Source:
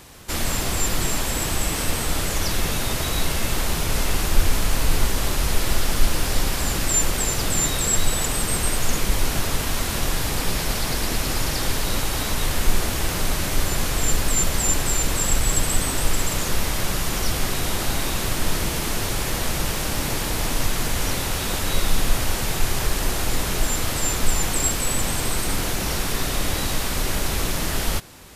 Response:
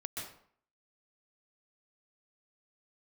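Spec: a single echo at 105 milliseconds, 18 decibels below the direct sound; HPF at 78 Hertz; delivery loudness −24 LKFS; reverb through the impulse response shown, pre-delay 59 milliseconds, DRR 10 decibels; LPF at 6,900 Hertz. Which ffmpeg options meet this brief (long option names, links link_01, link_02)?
-filter_complex "[0:a]highpass=78,lowpass=6900,aecho=1:1:105:0.126,asplit=2[link_01][link_02];[1:a]atrim=start_sample=2205,adelay=59[link_03];[link_02][link_03]afir=irnorm=-1:irlink=0,volume=-10.5dB[link_04];[link_01][link_04]amix=inputs=2:normalize=0,volume=1.5dB"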